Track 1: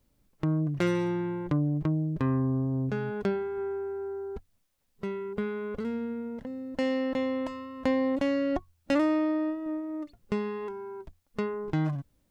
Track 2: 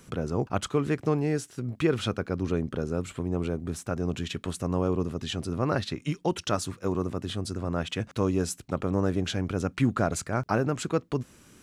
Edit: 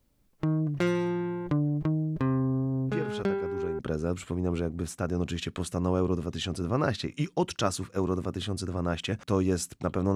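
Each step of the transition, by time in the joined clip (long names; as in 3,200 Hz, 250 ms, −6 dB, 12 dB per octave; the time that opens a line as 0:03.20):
track 1
0:02.86: mix in track 2 from 0:01.74 0.93 s −10 dB
0:03.79: continue with track 2 from 0:02.67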